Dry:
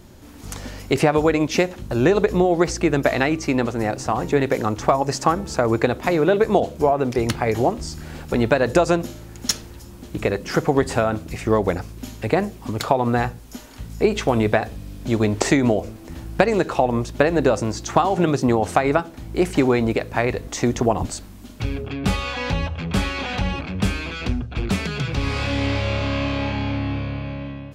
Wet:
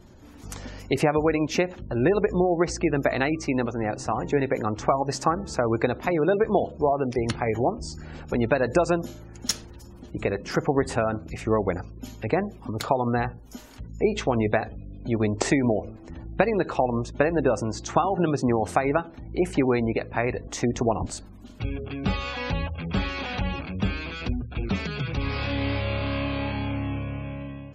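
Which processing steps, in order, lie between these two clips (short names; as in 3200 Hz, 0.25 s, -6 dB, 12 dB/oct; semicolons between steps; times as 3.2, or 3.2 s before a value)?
vibrato 5.3 Hz 5.8 cents; spectral gate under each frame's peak -30 dB strong; gain -4.5 dB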